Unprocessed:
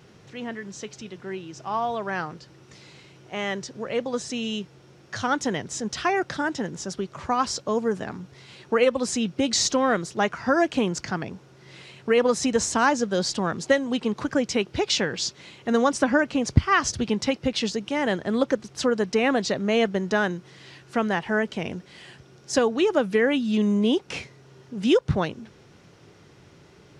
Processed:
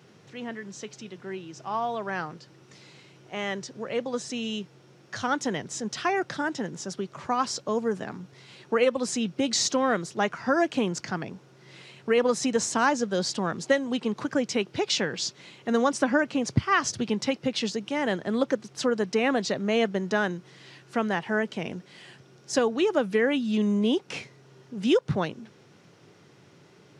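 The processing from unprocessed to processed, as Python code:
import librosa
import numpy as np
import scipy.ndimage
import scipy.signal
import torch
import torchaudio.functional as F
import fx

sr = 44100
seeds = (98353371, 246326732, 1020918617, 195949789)

y = scipy.signal.sosfilt(scipy.signal.butter(4, 110.0, 'highpass', fs=sr, output='sos'), x)
y = y * 10.0 ** (-2.5 / 20.0)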